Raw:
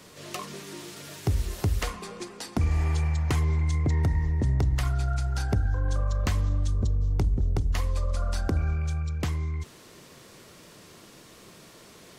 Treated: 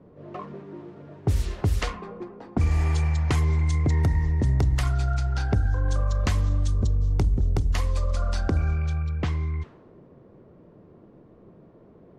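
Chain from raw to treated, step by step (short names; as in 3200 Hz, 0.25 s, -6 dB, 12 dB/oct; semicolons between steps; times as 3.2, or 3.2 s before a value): low-pass opened by the level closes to 490 Hz, open at -20 dBFS; gain +2.5 dB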